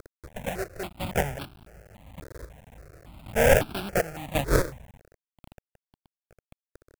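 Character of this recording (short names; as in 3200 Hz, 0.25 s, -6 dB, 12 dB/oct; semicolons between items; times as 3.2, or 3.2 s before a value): a quantiser's noise floor 8-bit, dither none; chopped level 0.92 Hz, depth 65%, duty 25%; aliases and images of a low sample rate 1100 Hz, jitter 20%; notches that jump at a steady rate 3.6 Hz 780–1900 Hz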